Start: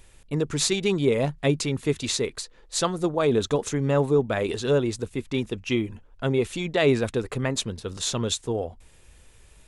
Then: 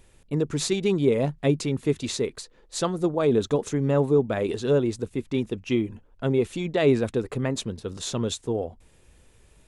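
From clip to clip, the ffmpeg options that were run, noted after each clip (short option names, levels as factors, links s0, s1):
-af "equalizer=f=260:w=0.38:g=6.5,volume=0.562"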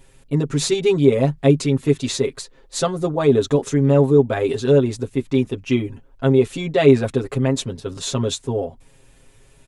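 -af "aecho=1:1:7.4:0.96,volume=1.33"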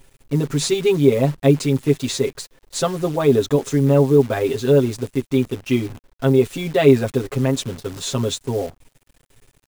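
-af "acrusher=bits=7:dc=4:mix=0:aa=0.000001"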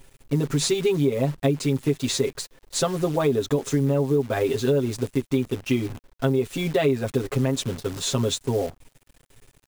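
-af "acompressor=threshold=0.126:ratio=6"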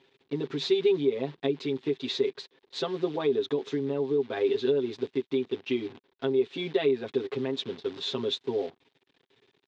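-af "highpass=250,equalizer=f=390:t=q:w=4:g=7,equalizer=f=590:t=q:w=4:g=-7,equalizer=f=1300:t=q:w=4:g=-4,equalizer=f=3600:t=q:w=4:g=6,lowpass=f=4300:w=0.5412,lowpass=f=4300:w=1.3066,volume=0.501"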